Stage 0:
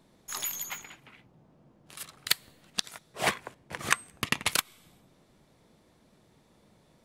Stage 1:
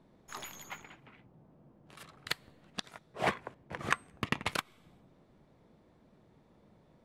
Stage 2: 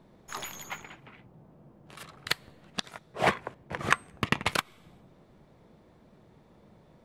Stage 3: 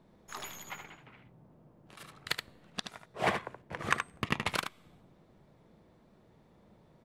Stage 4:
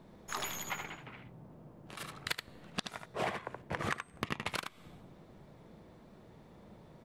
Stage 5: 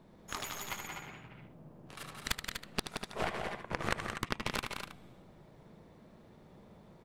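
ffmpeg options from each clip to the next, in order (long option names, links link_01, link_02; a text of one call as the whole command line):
ffmpeg -i in.wav -af "lowpass=frequency=1300:poles=1" out.wav
ffmpeg -i in.wav -af "equalizer=frequency=270:width_type=o:width=0.31:gain=-3,volume=6dB" out.wav
ffmpeg -i in.wav -af "aecho=1:1:75:0.447,volume=-5dB" out.wav
ffmpeg -i in.wav -af "acompressor=threshold=-38dB:ratio=12,volume=6dB" out.wav
ffmpeg -i in.wav -af "aecho=1:1:174.9|244.9:0.562|0.447,aeval=exprs='0.2*(cos(1*acos(clip(val(0)/0.2,-1,1)))-cos(1*PI/2))+0.0708*(cos(4*acos(clip(val(0)/0.2,-1,1)))-cos(4*PI/2))+0.00794*(cos(7*acos(clip(val(0)/0.2,-1,1)))-cos(7*PI/2))':channel_layout=same" out.wav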